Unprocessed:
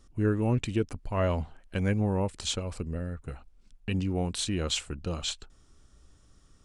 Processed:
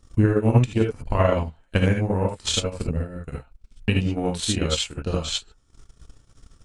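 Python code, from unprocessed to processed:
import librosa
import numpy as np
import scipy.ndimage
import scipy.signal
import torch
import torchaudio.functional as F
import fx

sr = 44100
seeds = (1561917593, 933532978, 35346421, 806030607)

y = fx.rev_gated(x, sr, seeds[0], gate_ms=100, shape='rising', drr_db=-4.0)
y = fx.transient(y, sr, attack_db=11, sustain_db=-10)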